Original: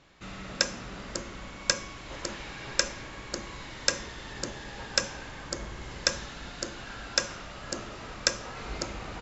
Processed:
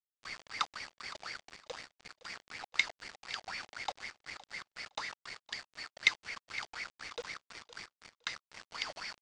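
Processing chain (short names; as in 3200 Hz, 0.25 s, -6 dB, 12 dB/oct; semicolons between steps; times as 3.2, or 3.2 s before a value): four-band scrambler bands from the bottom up 2341; Bessel high-pass 190 Hz, order 8; tilt +4 dB/oct; AGC gain up to 6 dB; wah 4 Hz 470–2200 Hz, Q 11; companded quantiser 4-bit; Bessel low-pass 4800 Hz, order 8; feedback echo 0.513 s, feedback 17%, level -18 dB; gain +13 dB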